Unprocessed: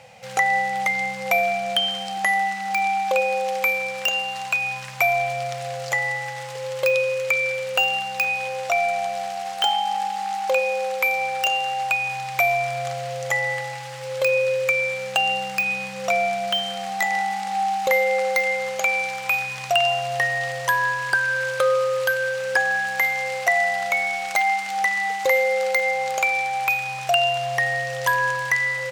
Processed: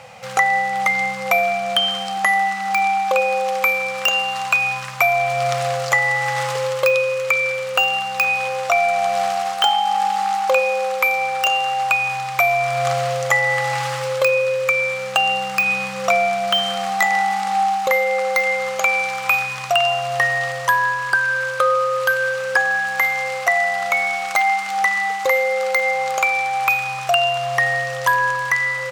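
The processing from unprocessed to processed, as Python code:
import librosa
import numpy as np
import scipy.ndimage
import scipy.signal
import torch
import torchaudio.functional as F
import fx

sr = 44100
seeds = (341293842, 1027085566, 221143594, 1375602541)

y = fx.peak_eq(x, sr, hz=1200.0, db=9.5, octaves=0.49)
y = fx.rider(y, sr, range_db=10, speed_s=0.5)
y = y * librosa.db_to_amplitude(2.5)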